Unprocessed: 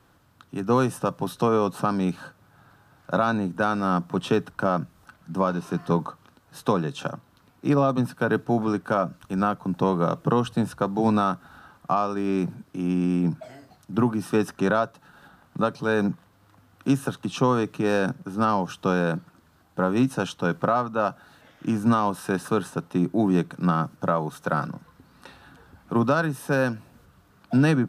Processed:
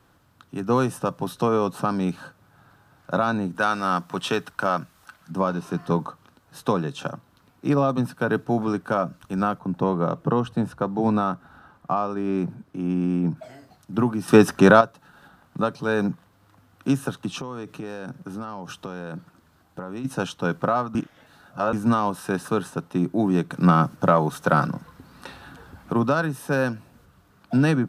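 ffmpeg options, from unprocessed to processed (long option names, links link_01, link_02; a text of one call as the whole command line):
ffmpeg -i in.wav -filter_complex "[0:a]asettb=1/sr,asplit=3[link_01][link_02][link_03];[link_01]atrim=end=3.554[link_04];[link_02]atrim=start=3.55:end=5.31,asetpts=PTS-STARTPTS,afade=type=in:duration=0.004:curve=qsin,afade=type=out:start_time=1.756:duration=0.004:curve=qsin,tiltshelf=frequency=700:gain=-6[link_05];[link_03]atrim=start=5.306[link_06];[link_04][link_05]acrossfade=duration=0.004:curve1=hsin:curve2=qsin[link_07];[link_07][link_06]acrossfade=duration=0.004:curve1=qsin:curve2=hsin,asettb=1/sr,asplit=3[link_08][link_09][link_10];[link_08]atrim=end=9.594[link_11];[link_09]atrim=start=9.59:end=13.37,asetpts=PTS-STARTPTS,afade=type=in:duration=0.004:curve=qsin,afade=type=out:start_time=3.776:duration=0.004:curve=qsin,highshelf=frequency=2700:gain=-8.5[link_12];[link_10]atrim=start=13.366[link_13];[link_11][link_12]acrossfade=duration=0.004:curve1=hsin:curve2=qsin[link_14];[link_14][link_13]acrossfade=duration=0.004:curve1=qsin:curve2=hsin,asplit=3[link_15][link_16][link_17];[link_15]afade=type=out:start_time=17.37:duration=0.02[link_18];[link_16]acompressor=threshold=-29dB:ratio=12:attack=3.2:release=140:knee=1:detection=peak,afade=type=in:start_time=17.37:duration=0.02,afade=type=out:start_time=20.04:duration=0.02[link_19];[link_17]afade=type=in:start_time=20.04:duration=0.02[link_20];[link_18][link_19][link_20]amix=inputs=3:normalize=0,asettb=1/sr,asplit=3[link_21][link_22][link_23];[link_21]atrim=end=23.504[link_24];[link_22]atrim=start=23.5:end=25.93,asetpts=PTS-STARTPTS,afade=type=in:duration=0.004:curve=qsin,afade=type=out:start_time=2.426:duration=0.004:curve=qsin,acontrast=54[link_25];[link_23]atrim=start=25.926[link_26];[link_24][link_25]acrossfade=duration=0.004:curve1=hsin:curve2=qsin[link_27];[link_27][link_26]acrossfade=duration=0.004:curve1=qsin:curve2=hsin,asplit=5[link_28][link_29][link_30][link_31][link_32];[link_28]atrim=end=14.282[link_33];[link_29]atrim=start=14.278:end=14.812,asetpts=PTS-STARTPTS,volume=9dB[link_34];[link_30]atrim=start=14.808:end=20.952[link_35];[link_31]atrim=start=20.948:end=21.732,asetpts=PTS-STARTPTS,areverse[link_36];[link_32]atrim=start=21.728[link_37];[link_33][link_34]acrossfade=duration=0.004:curve1=hsin:curve2=hsin[link_38];[link_38][link_35]acrossfade=duration=0.004:curve1=hsin:curve2=hsin[link_39];[link_39][link_36]acrossfade=duration=0.004:curve1=hsin:curve2=hsin[link_40];[link_40][link_37]acrossfade=duration=0.004:curve1=hsin:curve2=hsin" out.wav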